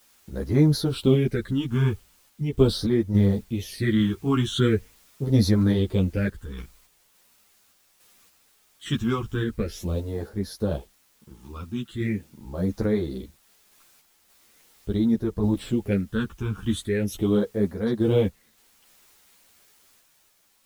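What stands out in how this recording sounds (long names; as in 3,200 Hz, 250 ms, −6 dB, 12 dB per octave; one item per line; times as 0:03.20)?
phaser sweep stages 8, 0.41 Hz, lowest notch 560–2,800 Hz
a quantiser's noise floor 10 bits, dither triangular
sample-and-hold tremolo
a shimmering, thickened sound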